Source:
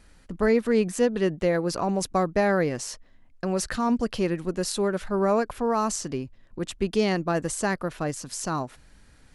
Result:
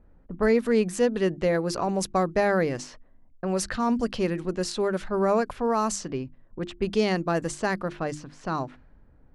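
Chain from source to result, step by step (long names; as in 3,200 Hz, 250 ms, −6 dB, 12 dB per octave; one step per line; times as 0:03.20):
low-pass that shuts in the quiet parts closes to 670 Hz, open at −21.5 dBFS
mains-hum notches 50/100/150/200/250/300/350 Hz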